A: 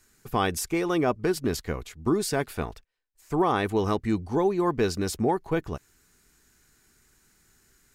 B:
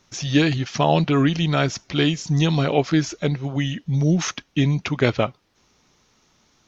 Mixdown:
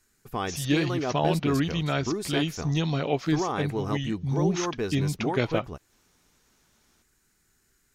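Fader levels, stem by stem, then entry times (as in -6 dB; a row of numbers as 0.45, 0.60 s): -5.5, -7.0 dB; 0.00, 0.35 s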